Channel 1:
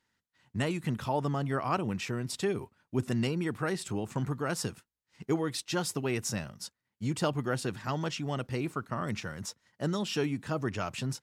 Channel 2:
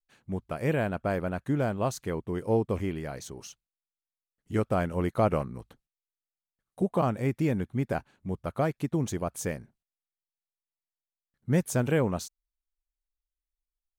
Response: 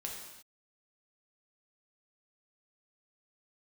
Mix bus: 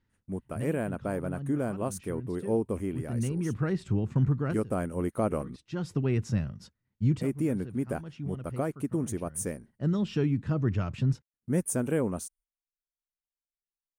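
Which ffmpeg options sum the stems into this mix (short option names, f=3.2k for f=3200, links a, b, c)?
-filter_complex "[0:a]aemphasis=mode=reproduction:type=riaa,volume=-2dB[a];[1:a]equalizer=f=9.3k:w=5:g=14,agate=range=-17dB:threshold=-57dB:ratio=16:detection=peak,equalizer=f=125:t=o:w=1:g=-6,equalizer=f=250:t=o:w=1:g=3,equalizer=f=2k:t=o:w=1:g=-4,equalizer=f=4k:t=o:w=1:g=-11,volume=-1dB,asplit=3[b][c][d];[b]atrim=end=5.56,asetpts=PTS-STARTPTS,afade=t=out:st=5.556:d=0.004:c=hsin[e];[c]atrim=start=5.56:end=7.21,asetpts=PTS-STARTPTS,volume=0[f];[d]atrim=start=7.21,asetpts=PTS-STARTPTS,afade=t=in:d=0.004:c=hsin[g];[e][f][g]concat=n=3:v=0:a=1,asplit=2[h][i];[i]apad=whole_len=494814[j];[a][j]sidechaincompress=threshold=-42dB:ratio=10:attack=16:release=418[k];[k][h]amix=inputs=2:normalize=0,equalizer=f=790:w=1.5:g=-5"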